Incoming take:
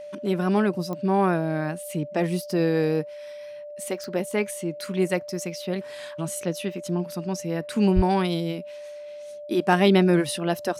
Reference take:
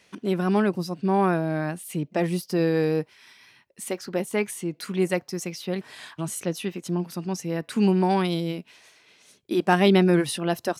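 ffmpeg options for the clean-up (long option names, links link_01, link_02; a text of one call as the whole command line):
ffmpeg -i in.wav -filter_complex "[0:a]adeclick=threshold=4,bandreject=frequency=590:width=30,asplit=3[link_01][link_02][link_03];[link_01]afade=type=out:start_time=7.95:duration=0.02[link_04];[link_02]highpass=frequency=140:width=0.5412,highpass=frequency=140:width=1.3066,afade=type=in:start_time=7.95:duration=0.02,afade=type=out:start_time=8.07:duration=0.02[link_05];[link_03]afade=type=in:start_time=8.07:duration=0.02[link_06];[link_04][link_05][link_06]amix=inputs=3:normalize=0" out.wav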